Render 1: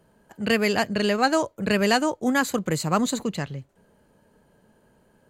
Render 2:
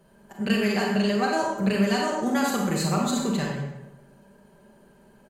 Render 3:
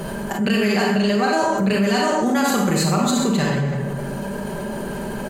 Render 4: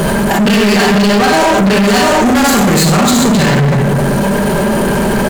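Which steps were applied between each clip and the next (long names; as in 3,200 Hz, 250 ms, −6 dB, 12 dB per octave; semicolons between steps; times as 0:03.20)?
comb filter 5.1 ms, depth 59%; downward compressor, threshold −24 dBFS, peak gain reduction 11.5 dB; convolution reverb RT60 1.0 s, pre-delay 28 ms, DRR −1.5 dB
envelope flattener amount 70%; level +1.5 dB
leveller curve on the samples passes 5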